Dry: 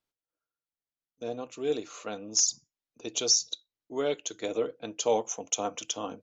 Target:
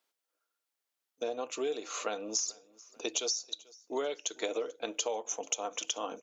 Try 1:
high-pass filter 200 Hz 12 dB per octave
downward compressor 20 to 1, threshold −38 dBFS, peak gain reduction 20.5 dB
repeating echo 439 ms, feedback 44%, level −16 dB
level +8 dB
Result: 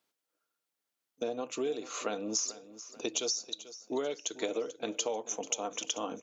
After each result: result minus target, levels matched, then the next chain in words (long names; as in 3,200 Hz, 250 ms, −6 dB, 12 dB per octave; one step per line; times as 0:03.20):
echo-to-direct +8 dB; 250 Hz band +4.0 dB
high-pass filter 200 Hz 12 dB per octave
downward compressor 20 to 1, threshold −38 dBFS, peak gain reduction 20.5 dB
repeating echo 439 ms, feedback 44%, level −24 dB
level +8 dB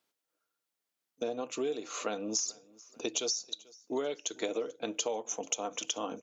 250 Hz band +4.0 dB
high-pass filter 410 Hz 12 dB per octave
downward compressor 20 to 1, threshold −38 dBFS, peak gain reduction 20.5 dB
repeating echo 439 ms, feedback 44%, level −24 dB
level +8 dB